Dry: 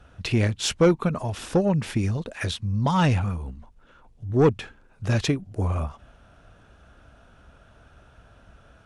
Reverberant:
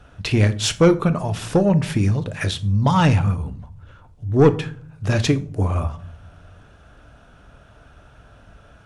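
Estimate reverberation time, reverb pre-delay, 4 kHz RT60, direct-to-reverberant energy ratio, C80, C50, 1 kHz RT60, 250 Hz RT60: 0.55 s, 7 ms, 0.30 s, 11.0 dB, 22.0 dB, 17.5 dB, 0.50 s, 0.95 s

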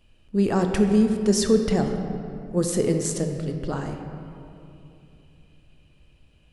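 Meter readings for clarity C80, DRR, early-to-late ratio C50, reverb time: 6.5 dB, 4.5 dB, 6.0 dB, 2.8 s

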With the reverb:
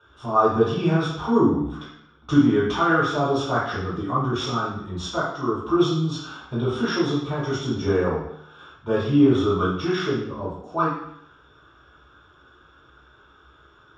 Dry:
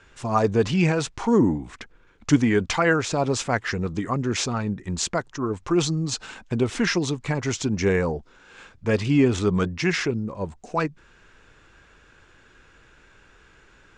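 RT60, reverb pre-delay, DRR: 0.70 s, 3 ms, -9.5 dB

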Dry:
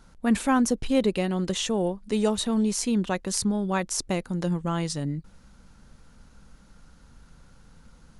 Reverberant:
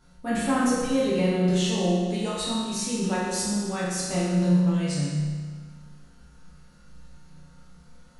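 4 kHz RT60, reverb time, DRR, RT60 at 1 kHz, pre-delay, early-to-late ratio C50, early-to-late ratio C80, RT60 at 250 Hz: 1.5 s, 1.6 s, -9.0 dB, 1.6 s, 6 ms, -1.5 dB, 1.0 dB, 1.6 s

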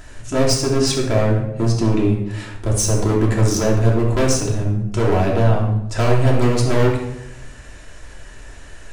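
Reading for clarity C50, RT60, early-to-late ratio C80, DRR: 3.5 dB, 0.85 s, 7.5 dB, -3.0 dB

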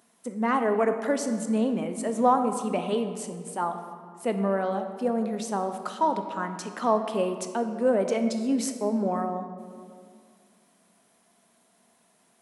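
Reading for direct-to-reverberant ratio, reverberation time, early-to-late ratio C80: 7.0 dB, 2.2 s, 9.0 dB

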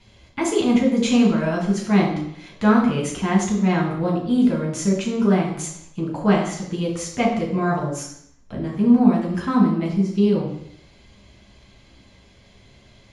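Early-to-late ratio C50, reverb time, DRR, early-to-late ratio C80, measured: 4.5 dB, 0.70 s, -3.0 dB, 7.5 dB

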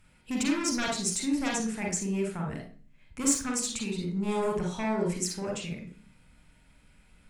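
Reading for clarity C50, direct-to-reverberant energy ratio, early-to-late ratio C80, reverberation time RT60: 5.0 dB, 0.5 dB, 11.5 dB, 0.45 s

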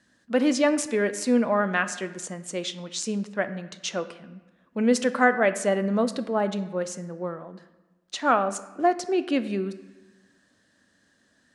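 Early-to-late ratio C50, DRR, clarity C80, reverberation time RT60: 13.5 dB, 11.0 dB, 15.5 dB, 1.2 s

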